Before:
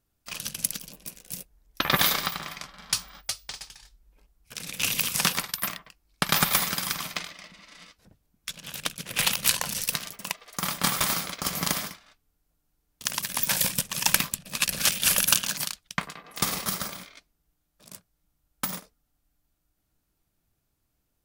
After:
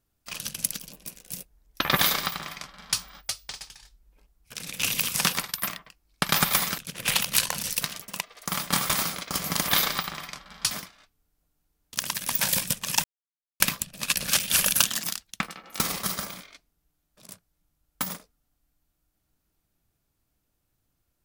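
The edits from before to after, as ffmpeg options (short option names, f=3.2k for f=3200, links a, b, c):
-filter_complex "[0:a]asplit=7[a][b][c][d][e][f][g];[a]atrim=end=6.782[h];[b]atrim=start=8.888:end=11.792[i];[c]atrim=start=1.958:end=2.992[j];[d]atrim=start=11.788:end=14.12,asetpts=PTS-STARTPTS,afade=t=out:st=2.328:d=0.004:c=hsin,apad=pad_dur=0.56[k];[e]atrim=start=14.12:end=15.384,asetpts=PTS-STARTPTS,afade=t=in:d=0.004:c=hsin[l];[f]atrim=start=15.38:end=16.45,asetpts=PTS-STARTPTS,asetrate=48951,aresample=44100[m];[g]atrim=start=16.446[n];[h][i]acrossfade=d=0.004:c1=hsin:c2=hsin[o];[o][j]acrossfade=d=0.004:c1=hsin:c2=hsin[p];[k][l]concat=n=2:v=0:a=1[q];[p][q]acrossfade=d=0.004:c1=hsin:c2=hsin[r];[r][m]acrossfade=d=0.004:c1=hsin:c2=hsin[s];[s][n]acrossfade=d=0.004:c1=hsin:c2=hsin"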